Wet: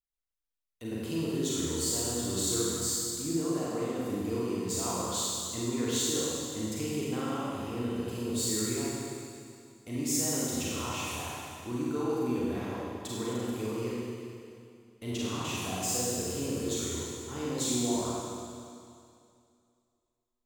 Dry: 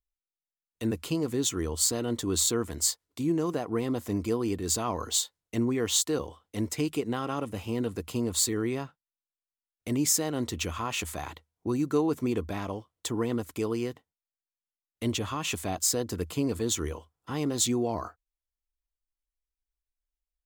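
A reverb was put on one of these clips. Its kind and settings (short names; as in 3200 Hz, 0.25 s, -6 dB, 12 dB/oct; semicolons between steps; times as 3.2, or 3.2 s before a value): Schroeder reverb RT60 2.4 s, combs from 33 ms, DRR -7 dB; gain -10 dB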